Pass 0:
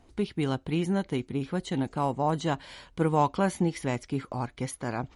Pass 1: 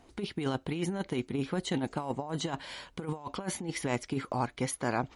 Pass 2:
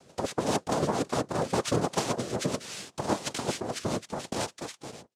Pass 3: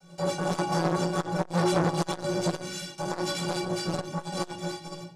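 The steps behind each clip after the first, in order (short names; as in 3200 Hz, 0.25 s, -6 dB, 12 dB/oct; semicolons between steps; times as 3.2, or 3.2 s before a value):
low shelf 160 Hz -8.5 dB; negative-ratio compressor -31 dBFS, ratio -0.5
ending faded out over 1.57 s; noise vocoder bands 2; rotary speaker horn 5 Hz, later 0.7 Hz, at 1.25; gain +7 dB
metallic resonator 170 Hz, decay 0.32 s, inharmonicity 0.03; reverb RT60 0.45 s, pre-delay 5 ms, DRR -7.5 dB; core saturation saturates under 900 Hz; gain +6.5 dB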